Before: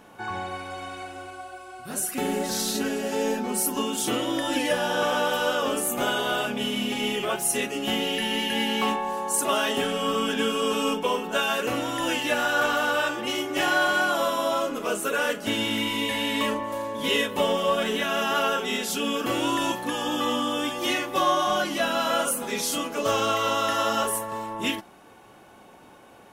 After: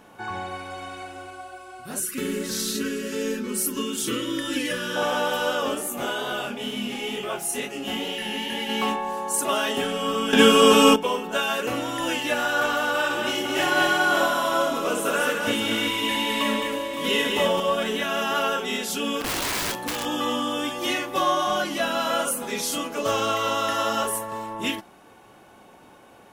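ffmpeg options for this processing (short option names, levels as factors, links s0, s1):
-filter_complex "[0:a]asettb=1/sr,asplit=3[s0][s1][s2];[s0]atrim=end=2.004[s3];[s1]atrim=start=2:end=4.96,asetpts=PTS-STARTPTS,afade=t=in:d=0.004:c=qsin,afade=t=out:st=2.956:d=0.004:c=qsin,asuperstop=centerf=750:order=4:qfactor=1.2[s4];[s2]atrim=start=4.956[s5];[s3][s4]acrossfade=d=0.004:c1=hsin:c2=qsin[s6];[s6][s5]acrossfade=d=0.004:c1=qsin:c2=hsin,asplit=3[s7][s8][s9];[s7]afade=t=out:st=5.74:d=0.02[s10];[s8]flanger=delay=19.5:depth=6.8:speed=2.2,afade=t=in:st=5.74:d=0.02,afade=t=out:st=8.68:d=0.02[s11];[s9]afade=t=in:st=8.68:d=0.02[s12];[s10][s11][s12]amix=inputs=3:normalize=0,asettb=1/sr,asplit=3[s13][s14][s15];[s13]atrim=end=12.894[s16];[s14]atrim=start=12.89:end=17.6,asetpts=PTS-STARTPTS,afade=t=in:d=0.004:c=qsin,afade=t=out:st=4.706:d=0.004:c=qsin,aecho=1:1:60|212|562:0.473|0.668|0.355,atrim=end_sample=207711[s17];[s15]atrim=start=17.596[s18];[s16][s17]acrossfade=d=0.004:c1=hsin:c2=qsin[s19];[s19][s18]acrossfade=d=0.004:c1=qsin:c2=hsin,asplit=3[s20][s21][s22];[s20]afade=t=out:st=19.2:d=0.02[s23];[s21]aeval=exprs='(mod(11.9*val(0)+1,2)-1)/11.9':c=same,afade=t=in:st=19.2:d=0.02,afade=t=out:st=20.04:d=0.02[s24];[s22]afade=t=in:st=20.04:d=0.02[s25];[s23][s24][s25]amix=inputs=3:normalize=0,asplit=3[s26][s27][s28];[s26]atrim=end=10.332[s29];[s27]atrim=start=10.328:end=10.962,asetpts=PTS-STARTPTS,volume=3.35[s30];[s28]atrim=start=10.958[s31];[s29][s30]acrossfade=d=0.004:c1=hsin:c2=hsin[s32];[s32][s31]acrossfade=d=0.004:c1=hsin:c2=hsin"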